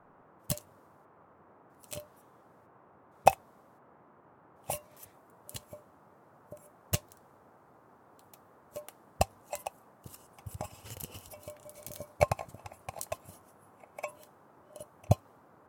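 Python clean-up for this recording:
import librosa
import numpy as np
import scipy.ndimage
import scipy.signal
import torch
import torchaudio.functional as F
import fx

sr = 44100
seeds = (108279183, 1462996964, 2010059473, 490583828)

y = fx.noise_reduce(x, sr, print_start_s=7.57, print_end_s=8.07, reduce_db=29.0)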